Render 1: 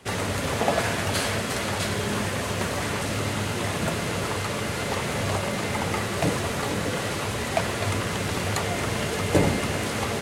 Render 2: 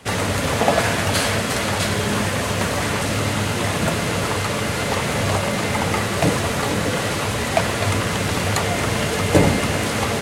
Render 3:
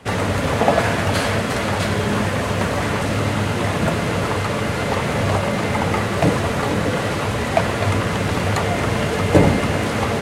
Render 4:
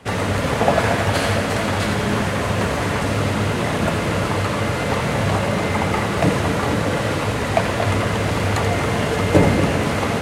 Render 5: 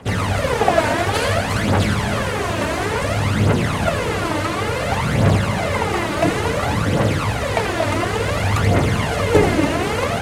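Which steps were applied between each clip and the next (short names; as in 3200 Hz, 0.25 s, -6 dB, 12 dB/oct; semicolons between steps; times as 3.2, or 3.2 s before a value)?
notch 380 Hz, Q 12; gain +6 dB
high shelf 3200 Hz -9.5 dB; gain +2 dB
split-band echo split 1300 Hz, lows 0.229 s, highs 84 ms, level -7 dB; gain -1 dB
phaser 0.57 Hz, delay 3.4 ms, feedback 58%; gain -1 dB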